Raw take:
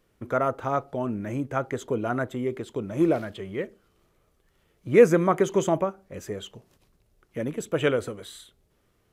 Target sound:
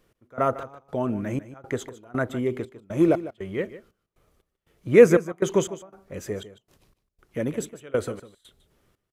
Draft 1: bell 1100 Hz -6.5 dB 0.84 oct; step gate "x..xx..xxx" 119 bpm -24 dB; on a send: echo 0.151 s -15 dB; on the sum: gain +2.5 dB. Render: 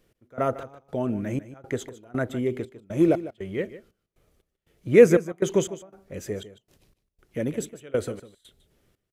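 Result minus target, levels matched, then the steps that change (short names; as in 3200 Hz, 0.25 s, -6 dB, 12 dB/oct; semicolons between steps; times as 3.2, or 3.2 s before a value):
1000 Hz band -3.0 dB
remove: bell 1100 Hz -6.5 dB 0.84 oct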